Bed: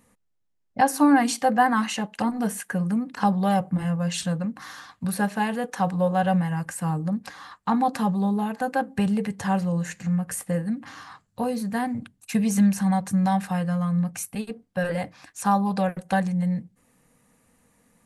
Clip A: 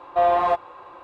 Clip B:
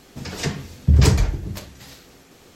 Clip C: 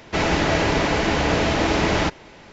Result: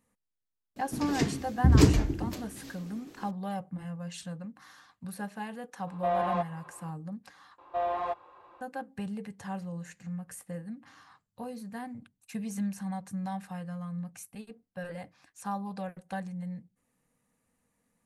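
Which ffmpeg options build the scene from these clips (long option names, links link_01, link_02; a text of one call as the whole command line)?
ffmpeg -i bed.wav -i cue0.wav -i cue1.wav -filter_complex "[1:a]asplit=2[link_01][link_02];[0:a]volume=-13.5dB[link_03];[2:a]equalizer=frequency=290:width=1.9:gain=14[link_04];[link_01]acontrast=36[link_05];[link_03]asplit=2[link_06][link_07];[link_06]atrim=end=7.584[link_08];[link_02]atrim=end=1.03,asetpts=PTS-STARTPTS,volume=-12dB[link_09];[link_07]atrim=start=8.606[link_10];[link_04]atrim=end=2.55,asetpts=PTS-STARTPTS,volume=-7.5dB,afade=type=in:duration=0.004:curve=hsin,afade=type=out:start_time=2.546:duration=0.004:curve=hsin,adelay=760[link_11];[link_05]atrim=end=1.03,asetpts=PTS-STARTPTS,volume=-15dB,afade=type=in:duration=0.004:curve=hsin,afade=type=out:start_time=1.026:duration=0.004:curve=hsin,adelay=5870[link_12];[link_08][link_09]acrossfade=duration=0.004:curve1=hsin:curve2=hsin[link_13];[link_13][link_10]acrossfade=duration=0.004:curve1=hsin:curve2=hsin[link_14];[link_14][link_11][link_12]amix=inputs=3:normalize=0" out.wav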